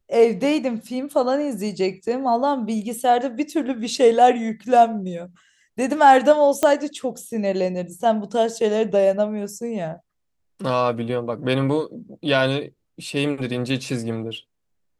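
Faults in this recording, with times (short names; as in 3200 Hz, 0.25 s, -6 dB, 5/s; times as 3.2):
6.63 pop -6 dBFS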